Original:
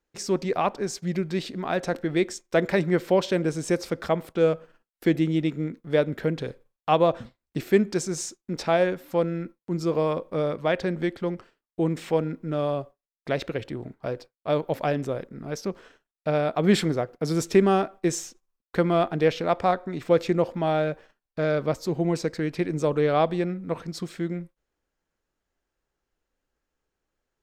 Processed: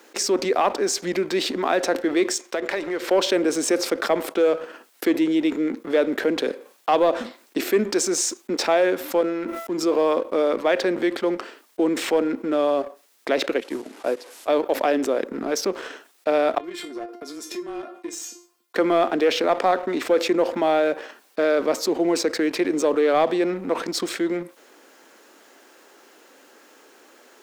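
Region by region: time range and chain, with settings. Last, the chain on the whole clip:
0:02.41–0:03.11: high-pass filter 390 Hz 6 dB per octave + high-shelf EQ 8,500 Hz −8 dB + downward compressor 4 to 1, threshold −34 dBFS
0:09.21–0:09.83: notch filter 4,400 Hz, Q 8.6 + tuned comb filter 670 Hz, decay 0.45 s, mix 50% + level that may fall only so fast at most 54 dB per second
0:13.60–0:14.48: linear delta modulator 64 kbit/s, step −45 dBFS + expander for the loud parts 2.5 to 1, over −39 dBFS
0:16.58–0:18.76: downward compressor 16 to 1, threshold −31 dBFS + frequency shifter −24 Hz + tuned comb filter 350 Hz, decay 0.24 s, mix 90%
whole clip: Butterworth high-pass 250 Hz 36 dB per octave; leveller curve on the samples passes 1; envelope flattener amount 50%; level −2.5 dB

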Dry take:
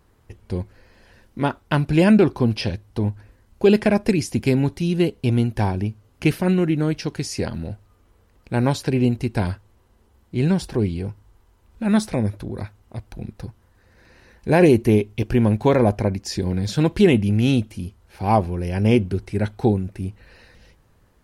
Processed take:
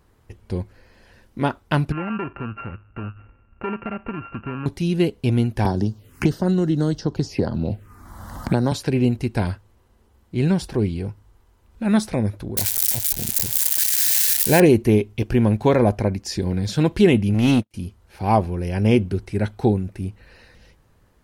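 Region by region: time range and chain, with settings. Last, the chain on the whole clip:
0:01.92–0:04.66: samples sorted by size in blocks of 32 samples + Butterworth low-pass 2,800 Hz 96 dB per octave + downward compressor 2 to 1, threshold −34 dBFS
0:05.65–0:08.72: phaser swept by the level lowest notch 400 Hz, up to 2,400 Hz, full sweep at −22 dBFS + multiband upward and downward compressor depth 100%
0:12.57–0:14.60: spike at every zero crossing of −16.5 dBFS + Butterworth band-reject 1,200 Hz, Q 4.1 + high-shelf EQ 3,900 Hz +11.5 dB
0:17.34–0:17.74: low-shelf EQ 87 Hz −11.5 dB + leveller curve on the samples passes 2 + expander for the loud parts 2.5 to 1, over −36 dBFS
whole clip: no processing

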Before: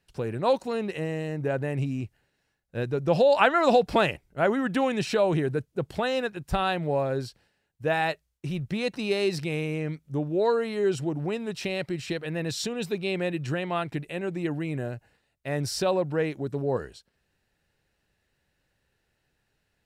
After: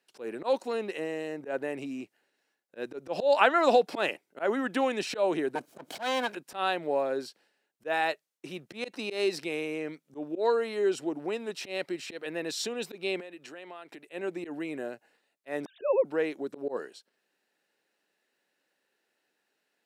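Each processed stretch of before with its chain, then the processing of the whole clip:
0:05.55–0:06.35: lower of the sound and its delayed copy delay 1.3 ms + envelope flattener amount 50%
0:13.20–0:14.08: high-pass filter 270 Hz 6 dB per octave + downward compressor 10 to 1, threshold −38 dBFS
0:15.65–0:16.05: three sine waves on the formant tracks + low-shelf EQ 240 Hz +9.5 dB
whole clip: high-pass filter 260 Hz 24 dB per octave; volume swells 105 ms; level −1.5 dB

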